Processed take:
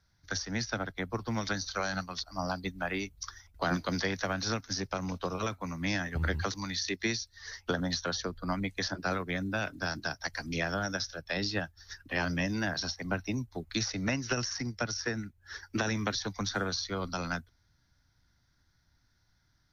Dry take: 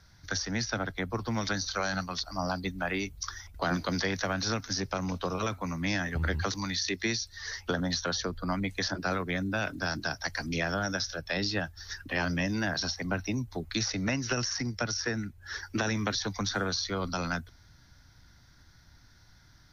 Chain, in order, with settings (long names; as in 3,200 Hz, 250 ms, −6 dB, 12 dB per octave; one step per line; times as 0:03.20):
expander for the loud parts 1.5 to 1, over −52 dBFS